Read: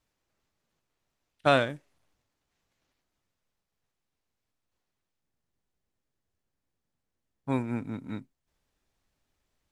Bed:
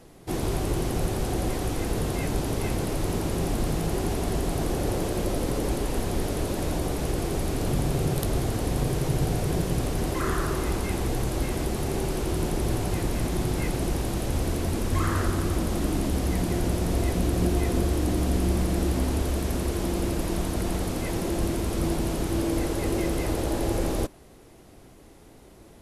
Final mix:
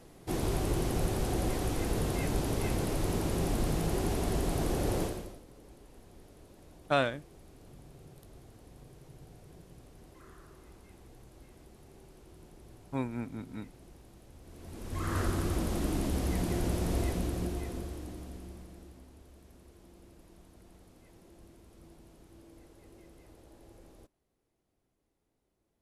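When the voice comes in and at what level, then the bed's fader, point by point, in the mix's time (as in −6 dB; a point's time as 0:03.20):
5.45 s, −5.0 dB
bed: 0:05.03 −4 dB
0:05.44 −27.5 dB
0:14.41 −27.5 dB
0:15.18 −5.5 dB
0:17.00 −5.5 dB
0:19.09 −29.5 dB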